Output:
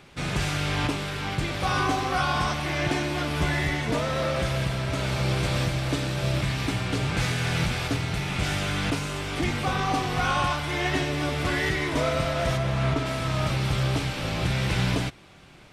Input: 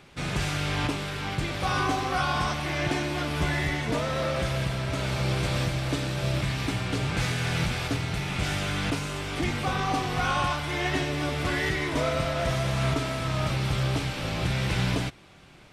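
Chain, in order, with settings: 12.56–13.05 high shelf 3800 Hz -> 5500 Hz -10.5 dB; gain +1.5 dB

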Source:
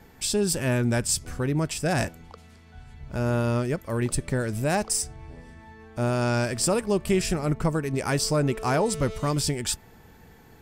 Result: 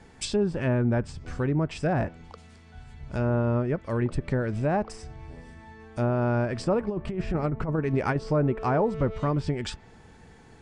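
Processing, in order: downsampling 22050 Hz; treble ducked by the level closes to 1300 Hz, closed at -20.5 dBFS; 6.8–8.16 negative-ratio compressor -25 dBFS, ratio -0.5

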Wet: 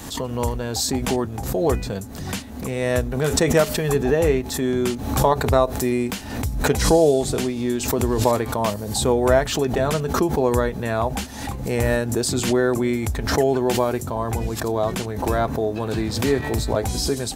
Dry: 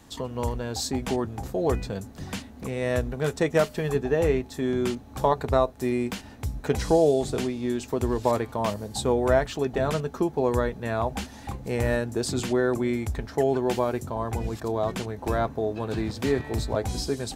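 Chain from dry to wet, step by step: high shelf 7700 Hz +8.5 dB; backwards sustainer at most 62 dB/s; gain +4 dB

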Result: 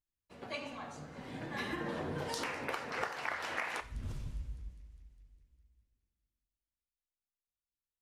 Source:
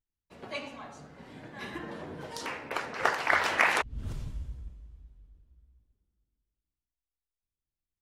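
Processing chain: Doppler pass-by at 2.21, 5 m/s, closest 2.6 m; compressor 6:1, threshold -44 dBFS, peak gain reduction 17 dB; thin delay 0.203 s, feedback 65%, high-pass 4500 Hz, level -16.5 dB; two-slope reverb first 0.45 s, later 1.6 s, DRR 10.5 dB; gain +8.5 dB

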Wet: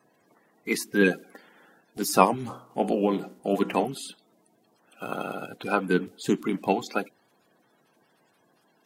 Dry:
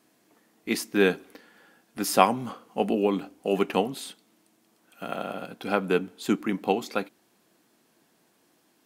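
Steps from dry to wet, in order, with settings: bin magnitudes rounded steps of 30 dB; 2.34–3.85 de-hum 62.12 Hz, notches 32; gain +1 dB

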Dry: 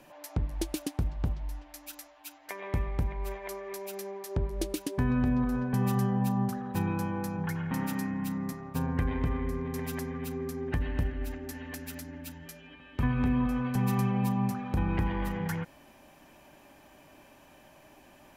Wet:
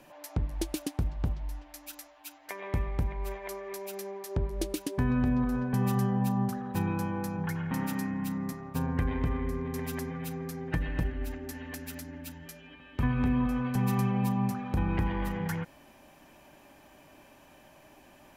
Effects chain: 10.09–11.04 comb 6.2 ms, depth 57%

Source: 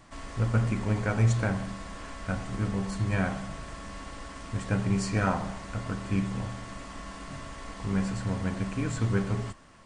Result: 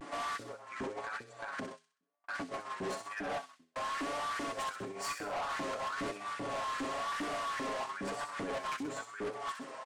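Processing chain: 1.6–3.76 gate -32 dBFS, range -56 dB; high shelf 3400 Hz -7 dB; comb 7.2 ms, depth 60%; de-hum 85.73 Hz, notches 5; negative-ratio compressor -35 dBFS, ratio -1; LFO high-pass saw up 2.5 Hz 270–1700 Hz; soft clip -36 dBFS, distortion -9 dB; vibrato 1 Hz 79 cents; thin delay 64 ms, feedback 51%, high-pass 4500 Hz, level -4.5 dB; mismatched tape noise reduction decoder only; gain +2.5 dB

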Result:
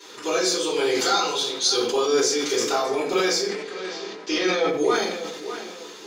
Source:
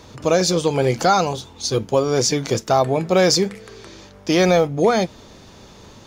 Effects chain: HPF 330 Hz 24 dB/oct; bell 620 Hz -14 dB 1 oct; darkening echo 0.599 s, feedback 41%, low-pass 3000 Hz, level -18.5 dB; compressor, threshold -28 dBFS, peak gain reduction 13 dB; 0.73–2.13 bell 3900 Hz +5.5 dB 0.85 oct; 3.4–4.68 LPF 5500 Hz 12 dB/oct; shoebox room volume 73 m³, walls mixed, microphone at 3.5 m; sustainer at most 48 dB/s; gain -6 dB

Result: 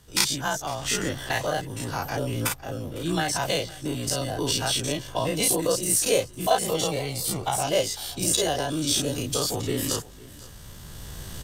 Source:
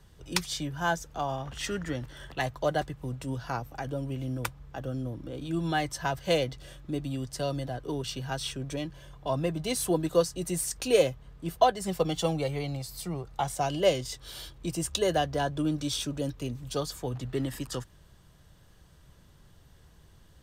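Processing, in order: spectral dilation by 0.12 s; recorder AGC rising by 5.6 dB/s; high shelf 4100 Hz +10 dB; echo 0.9 s -20.5 dB; granular stretch 0.56×, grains 34 ms; gain -3 dB

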